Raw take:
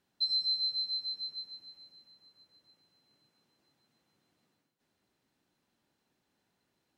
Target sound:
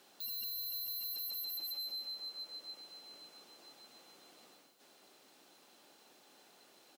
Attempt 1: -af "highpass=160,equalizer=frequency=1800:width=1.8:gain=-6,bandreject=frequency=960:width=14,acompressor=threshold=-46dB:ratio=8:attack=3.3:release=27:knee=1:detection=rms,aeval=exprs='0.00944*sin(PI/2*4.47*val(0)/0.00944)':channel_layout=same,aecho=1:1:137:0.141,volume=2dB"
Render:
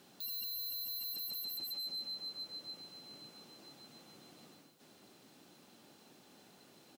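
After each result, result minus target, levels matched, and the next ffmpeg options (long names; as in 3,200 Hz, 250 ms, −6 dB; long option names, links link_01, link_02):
125 Hz band +14.0 dB; echo 69 ms early
-af "highpass=430,equalizer=frequency=1800:width=1.8:gain=-6,bandreject=frequency=960:width=14,acompressor=threshold=-46dB:ratio=8:attack=3.3:release=27:knee=1:detection=rms,aeval=exprs='0.00944*sin(PI/2*4.47*val(0)/0.00944)':channel_layout=same,aecho=1:1:137:0.141,volume=2dB"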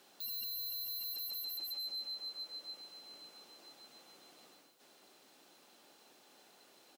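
echo 69 ms early
-af "highpass=430,equalizer=frequency=1800:width=1.8:gain=-6,bandreject=frequency=960:width=14,acompressor=threshold=-46dB:ratio=8:attack=3.3:release=27:knee=1:detection=rms,aeval=exprs='0.00944*sin(PI/2*4.47*val(0)/0.00944)':channel_layout=same,aecho=1:1:206:0.141,volume=2dB"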